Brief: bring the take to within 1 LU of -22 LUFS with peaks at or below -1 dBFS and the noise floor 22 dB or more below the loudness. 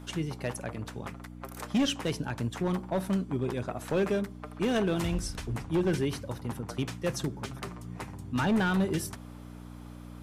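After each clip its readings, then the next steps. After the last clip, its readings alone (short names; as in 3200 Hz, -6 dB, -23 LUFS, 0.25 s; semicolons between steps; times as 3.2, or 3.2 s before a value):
clipped 1.6%; flat tops at -21.5 dBFS; hum 60 Hz; harmonics up to 300 Hz; hum level -43 dBFS; loudness -31.5 LUFS; peak -21.5 dBFS; loudness target -22.0 LUFS
-> clip repair -21.5 dBFS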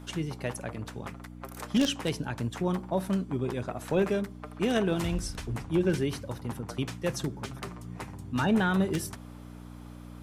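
clipped 0.0%; hum 60 Hz; harmonics up to 300 Hz; hum level -43 dBFS
-> de-hum 60 Hz, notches 5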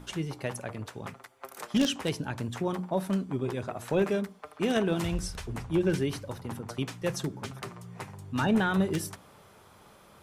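hum none; loudness -31.0 LUFS; peak -12.0 dBFS; loudness target -22.0 LUFS
-> gain +9 dB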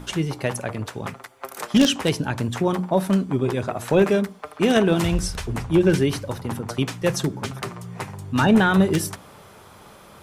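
loudness -22.0 LUFS; peak -3.0 dBFS; noise floor -47 dBFS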